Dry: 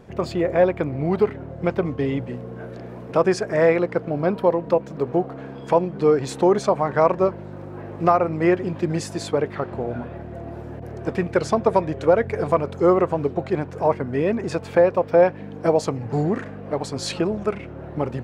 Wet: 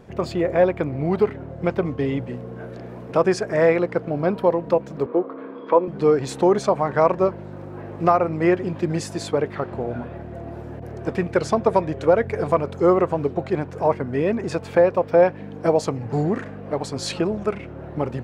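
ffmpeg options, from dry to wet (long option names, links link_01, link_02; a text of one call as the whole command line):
ffmpeg -i in.wav -filter_complex "[0:a]asettb=1/sr,asplit=3[link_01][link_02][link_03];[link_01]atrim=end=5.064[link_04];[link_02]atrim=start=5.06:end=5.88,asetpts=PTS-STARTPTS,afade=type=in:duration=0.004:curve=qsin,afade=type=out:start_time=0.816:duration=0.004:curve=qsin,highpass=frequency=240:width=0.5412,highpass=frequency=240:width=1.3066,equalizer=frequency=270:width_type=q:width=4:gain=3,equalizer=frequency=510:width_type=q:width=4:gain=4,equalizer=frequency=750:width_type=q:width=4:gain=-10,equalizer=frequency=1100:width_type=q:width=4:gain=9,equalizer=frequency=1700:width_type=q:width=4:gain=-4,equalizer=frequency=2800:width_type=q:width=4:gain=-7,lowpass=frequency=3300:width=0.5412,lowpass=frequency=3300:width=1.3066[link_05];[link_03]atrim=start=5.876[link_06];[link_04][link_05]acrossfade=duration=0.004:curve1=hsin:curve2=qsin[link_07];[link_07][link_06]acrossfade=duration=0.004:curve1=qsin:curve2=hsin" out.wav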